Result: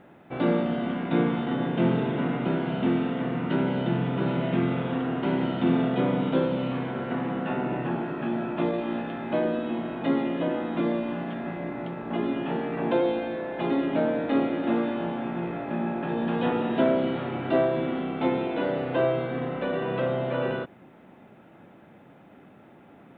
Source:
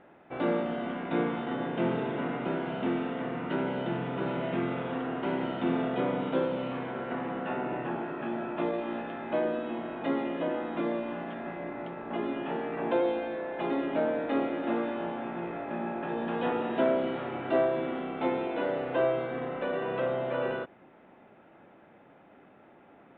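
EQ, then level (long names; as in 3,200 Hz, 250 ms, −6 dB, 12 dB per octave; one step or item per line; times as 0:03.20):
bass and treble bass +12 dB, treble +10 dB
low-shelf EQ 80 Hz −11.5 dB
+2.0 dB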